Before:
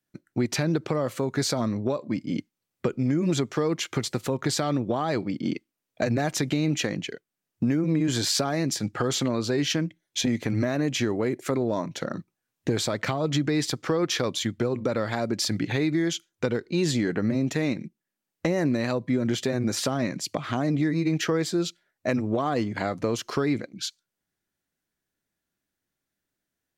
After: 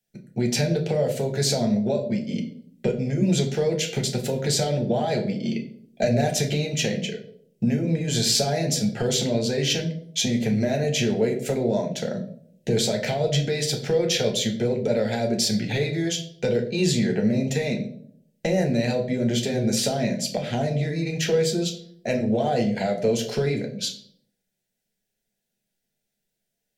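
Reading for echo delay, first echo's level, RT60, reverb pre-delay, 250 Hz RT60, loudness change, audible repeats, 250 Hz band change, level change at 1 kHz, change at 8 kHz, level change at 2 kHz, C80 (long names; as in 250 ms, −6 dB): no echo audible, no echo audible, 0.60 s, 3 ms, 0.80 s, +2.5 dB, no echo audible, +1.0 dB, 0.0 dB, +4.5 dB, +0.5 dB, 14.0 dB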